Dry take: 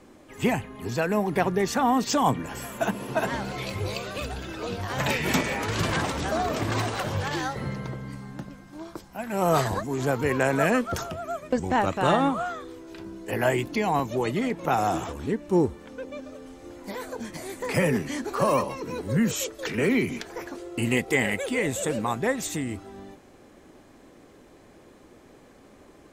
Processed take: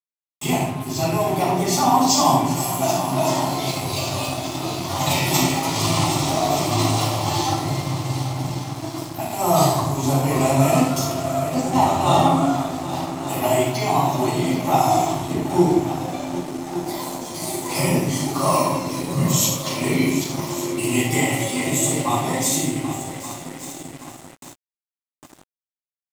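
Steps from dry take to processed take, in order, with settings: in parallel at +0.5 dB: compressor 16:1, threshold -35 dBFS, peak gain reduction 20 dB; on the sum: low shelf 94 Hz -6.5 dB; fixed phaser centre 320 Hz, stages 8; on a send: multi-head echo 0.39 s, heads second and third, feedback 55%, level -13 dB; on the sum: shoebox room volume 370 m³, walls mixed, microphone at 7 m; gate with hold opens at -17 dBFS; HPF 57 Hz 24 dB/oct; high shelf 4000 Hz +8.5 dB; crossover distortion -27.5 dBFS; gain -8 dB

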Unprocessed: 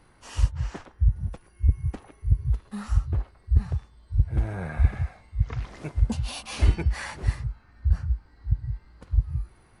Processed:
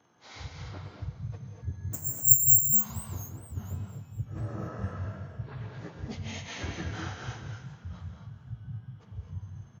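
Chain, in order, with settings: inharmonic rescaling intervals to 88%; 5.04–5.49 bell 350 Hz +13.5 dB 1.2 oct; frequency-shifting echo 0.397 s, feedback 39%, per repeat +43 Hz, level -17 dB; 1.93–2.65 careless resampling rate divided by 6×, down filtered, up zero stuff; HPF 94 Hz 24 dB/oct; low shelf 140 Hz -7 dB; non-linear reverb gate 0.28 s rising, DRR 2 dB; warbling echo 0.47 s, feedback 35%, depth 201 cents, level -23 dB; gain -3.5 dB

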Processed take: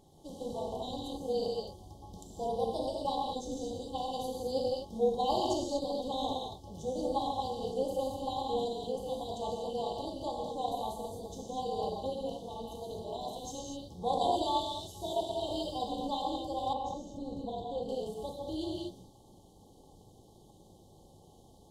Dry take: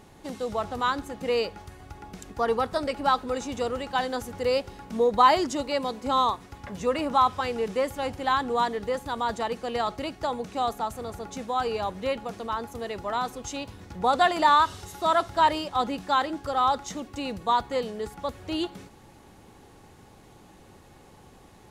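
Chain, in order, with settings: 3.3–3.9 band shelf 1100 Hz -8.5 dB 2.5 oct; FFT band-reject 890–3000 Hz; non-linear reverb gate 0.27 s flat, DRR -3 dB; AM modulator 260 Hz, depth 40%; 16.73–17.89 high shelf 2100 Hz -12 dB; gain -8 dB

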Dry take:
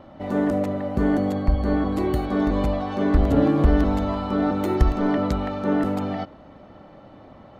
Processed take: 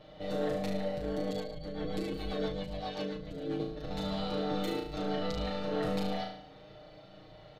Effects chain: ten-band EQ 250 Hz -12 dB, 500 Hz +3 dB, 1000 Hz -10 dB, 4000 Hz +10 dB; AM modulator 97 Hz, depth 60%; negative-ratio compressor -32 dBFS, ratio -1; flutter echo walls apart 6.2 m, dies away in 0.59 s; 1.3–3.6 rotary speaker horn 7.5 Hz; comb 6.5 ms, depth 94%; gain -8 dB

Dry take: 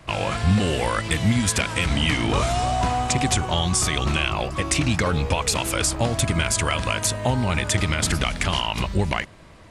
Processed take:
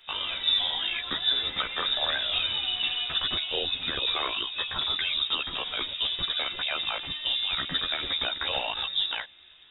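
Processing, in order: inverted band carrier 3700 Hz; chorus voices 6, 0.48 Hz, delay 13 ms, depth 2.1 ms; gain -4.5 dB

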